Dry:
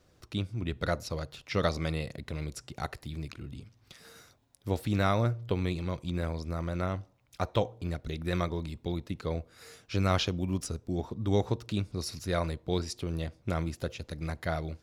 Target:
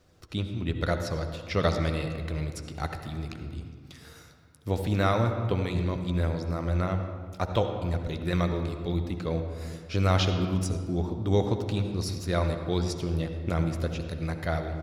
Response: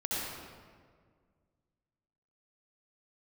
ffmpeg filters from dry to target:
-filter_complex "[0:a]asplit=2[a][b];[b]adelay=12,volume=-14dB[c];[a][c]amix=inputs=2:normalize=0,asplit=2[d][e];[1:a]atrim=start_sample=2205,highshelf=f=7.4k:g=-12[f];[e][f]afir=irnorm=-1:irlink=0,volume=-9.5dB[g];[d][g]amix=inputs=2:normalize=0"

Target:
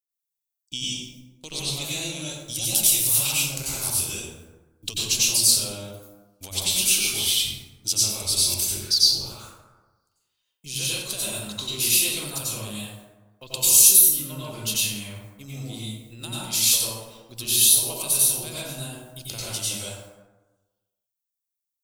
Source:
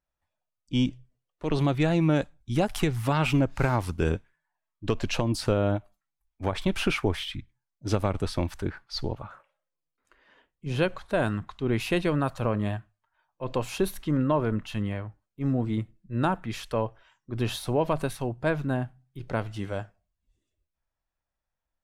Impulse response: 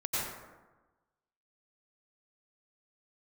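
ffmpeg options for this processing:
-filter_complex "[0:a]aemphasis=mode=production:type=75kf,agate=range=-29dB:threshold=-48dB:ratio=16:detection=peak,asettb=1/sr,asplit=3[a][b][c];[a]atrim=end=13.554[d];[b]atrim=start=13.55:end=14,asetpts=PTS-STARTPTS,afade=t=in:d=0.004:c=qsin,afade=t=out:st=0.446:d=0.004:c=qsin,bass=f=250:g=1,treble=f=4k:g=10[e];[c]atrim=start=13.996[f];[d][e]acrossfade=d=0.004:c1=hsin:c2=qsin[g];[g][f]acrossfade=d=0.004:c1=qsin:c2=hsin,acompressor=threshold=-33dB:ratio=6,aexciter=amount=15.3:drive=2.7:freq=2.7k[h];[1:a]atrim=start_sample=2205[i];[h][i]afir=irnorm=-1:irlink=0,volume=-7dB"

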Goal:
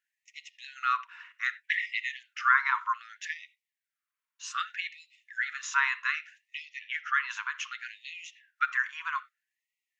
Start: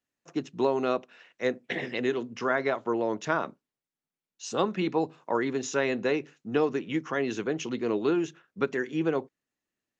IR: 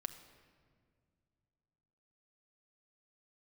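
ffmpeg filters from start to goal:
-filter_complex "[0:a]asettb=1/sr,asplit=3[a][b][c];[a]atrim=end=6.624[d];[b]atrim=start=6.62:end=7.29,asetpts=PTS-STARTPTS,afade=t=in:d=0.004:c=qsin,afade=t=out:st=0.666:d=0.004:c=qsin,lowpass=f=5.9k:w=0.5412,lowpass=f=5.9k:w=1.3066[e];[c]atrim=start=7.286[f];[d][e]acrossfade=d=0.004:c1=hsin:c2=qsin[g];[g][f]acrossfade=d=0.004:c1=qsin:c2=hsin,asplit=2[h][i];[1:a]atrim=start_sample=2205,atrim=end_sample=4410,lowpass=2.4k[j];[i][j]afir=irnorm=-1:irlink=0,volume=8dB[k];[h][k]amix=inputs=2:normalize=0,afftfilt=real='re*gte(b*sr/1024,900*pow(1900/900,0.5+0.5*sin(2*PI*0.64*pts/sr)))':imag='im*gte(b*sr/1024,900*pow(1900/900,0.5+0.5*sin(2*PI*0.64*pts/sr)))':win_size=1024:overlap=0.75"

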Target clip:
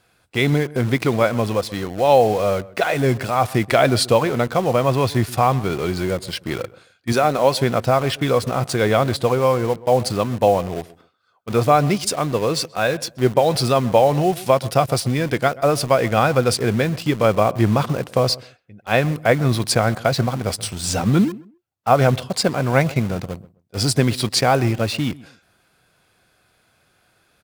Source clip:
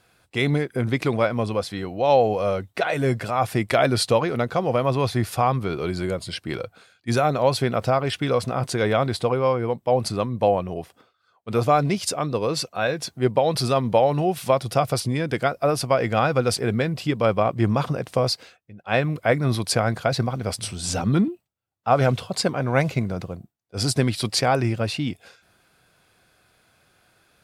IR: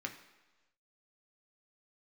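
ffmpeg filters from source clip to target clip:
-filter_complex "[0:a]asettb=1/sr,asplit=3[a][b][c];[a]atrim=end=7.124[d];[b]atrim=start=7.12:end=7.59,asetpts=PTS-STARTPTS,afade=t=in:d=0.004:c=qsin,afade=t=out:st=0.466:d=0.004:c=qsin,equalizer=f=110:t=o:w=0.7:g=-11.5[e];[c]atrim=start=7.586[f];[d][e]acrossfade=d=0.004:c1=hsin:c2=qsin[g];[g][f]acrossfade=d=0.004:c1=qsin:c2=hsin,asplit=2[h][i];[i]acrusher=bits=4:mix=0:aa=0.000001,volume=-5.5dB[j];[h][j]amix=inputs=2:normalize=0,asplit=2[k][l];[l]adelay=130,lowpass=f=1.4k:p=1,volume=-19dB,asplit=2[m][n];[n]adelay=130,lowpass=f=1.4k:p=1,volume=0.23[o];[k][m][o]amix=inputs=3:normalize=0"

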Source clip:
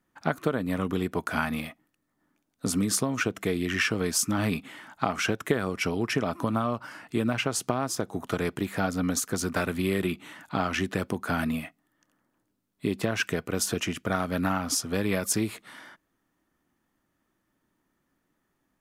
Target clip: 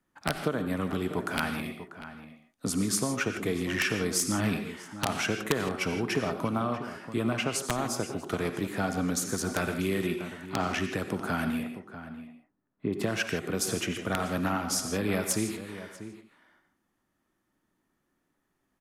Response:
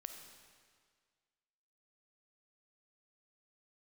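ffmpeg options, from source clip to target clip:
-filter_complex "[0:a]asettb=1/sr,asplit=3[a][b][c];[a]atrim=end=11.634[d];[b]atrim=start=11.63:end=12.93,asetpts=PTS-STARTPTS,afade=t=in:d=0.004:c=qsin,afade=t=out:st=1.296:d=0.004:c=qsin,lowpass=1.5k[e];[c]atrim=start=12.926[f];[d][e]acrossfade=d=0.004:c1=hsin:c2=qsin[g];[g][f]acrossfade=d=0.004:c1=qsin:c2=hsin,acrossover=split=180[h][i];[i]aeval=exprs='(mod(4.73*val(0)+1,2)-1)/4.73':c=same[j];[h][j]amix=inputs=2:normalize=0,asplit=2[k][l];[l]adelay=641.4,volume=-12dB,highshelf=f=4k:g=-14.4[m];[k][m]amix=inputs=2:normalize=0[n];[1:a]atrim=start_sample=2205,atrim=end_sample=4410,asetrate=25578,aresample=44100[o];[n][o]afir=irnorm=-1:irlink=0"

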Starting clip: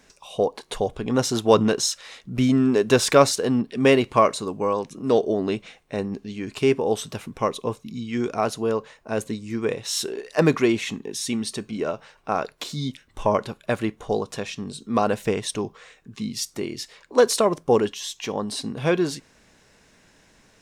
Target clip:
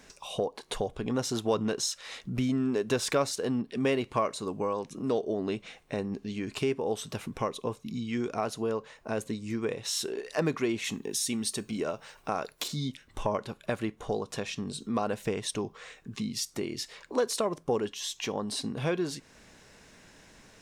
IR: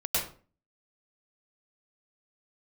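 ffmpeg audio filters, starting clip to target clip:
-filter_complex "[0:a]asettb=1/sr,asplit=3[a][b][c];[a]atrim=end=10.844[d];[b]atrim=start=10.84:end=12.68,asetpts=PTS-STARTPTS,afade=t=in:d=0.004:c=qsin,afade=t=out:st=1.836:d=0.004:c=qsin,highshelf=f=7.2k:g=12[e];[c]atrim=start=12.676[f];[d][e]acrossfade=d=0.004:c1=hsin:c2=qsin[g];[g][f]acrossfade=d=0.004:c1=qsin:c2=hsin,acompressor=threshold=-36dB:ratio=2,volume=1.5dB"

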